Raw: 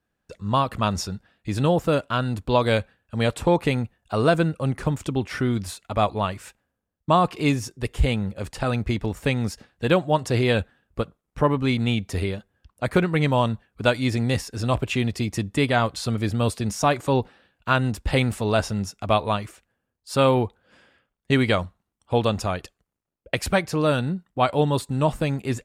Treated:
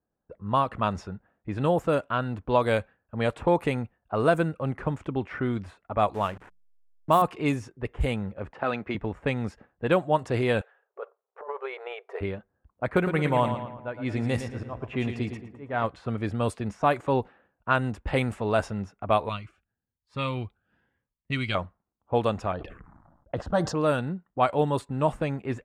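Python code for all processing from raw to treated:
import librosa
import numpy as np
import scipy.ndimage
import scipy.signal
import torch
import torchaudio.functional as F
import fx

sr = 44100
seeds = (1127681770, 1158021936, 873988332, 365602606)

y = fx.chain(x, sr, fx.delta_hold(step_db=-36.0),
    fx.high_shelf(hz=6700.0, db=11.0),
    fx.hum_notches(base_hz=60, count=3), at=(6.14, 7.22))
y = fx.chain(y, sr, fx.bandpass_edges(low_hz=210.0, high_hz=4800.0),
    fx.high_shelf(hz=2700.0, db=11.0), at=(8.53, 8.95))
y = fx.chain(y, sr, fx.brickwall_highpass(low_hz=380.0),
    fx.over_compress(threshold_db=-30.0, ratio=-1.0), at=(10.61, 12.21))
y = fx.chain(y, sr, fx.auto_swell(attack_ms=341.0),
    fx.echo_feedback(ms=112, feedback_pct=51, wet_db=-9.0), at=(12.95, 15.84))
y = fx.chain(y, sr, fx.curve_eq(hz=(110.0, 550.0, 4300.0, 8900.0), db=(0, -13, 9, 5)),
    fx.notch_cascade(direction='rising', hz=1.0), at=(19.29, 21.55))
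y = fx.chain(y, sr, fx.notch(hz=390.0, q=6.6),
    fx.env_phaser(low_hz=410.0, high_hz=2300.0, full_db=-26.5),
    fx.sustainer(db_per_s=43.0), at=(22.52, 23.75))
y = fx.peak_eq(y, sr, hz=4500.0, db=-11.5, octaves=1.5)
y = fx.env_lowpass(y, sr, base_hz=880.0, full_db=-15.5)
y = fx.low_shelf(y, sr, hz=340.0, db=-7.0)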